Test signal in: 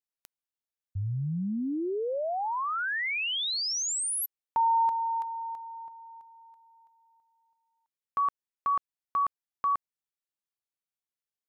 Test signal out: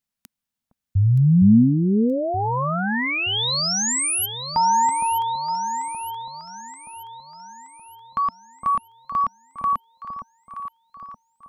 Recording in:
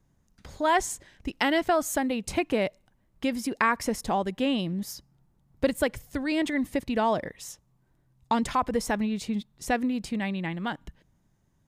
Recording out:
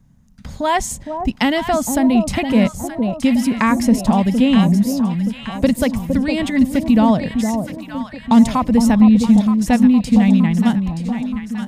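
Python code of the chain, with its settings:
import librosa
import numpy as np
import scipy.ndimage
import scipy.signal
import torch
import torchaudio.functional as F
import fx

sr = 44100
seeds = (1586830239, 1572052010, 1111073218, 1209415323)

p1 = fx.low_shelf_res(x, sr, hz=280.0, db=6.0, q=3.0)
p2 = p1 + fx.echo_alternate(p1, sr, ms=462, hz=930.0, feedback_pct=69, wet_db=-6.0, dry=0)
p3 = fx.dynamic_eq(p2, sr, hz=1500.0, q=2.4, threshold_db=-45.0, ratio=4.0, max_db=-6)
y = F.gain(torch.from_numpy(p3), 7.5).numpy()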